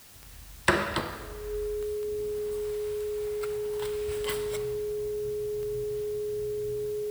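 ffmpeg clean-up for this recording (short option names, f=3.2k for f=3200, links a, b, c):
-af "adeclick=t=4,bandreject=f=420:w=30,afwtdn=0.0025"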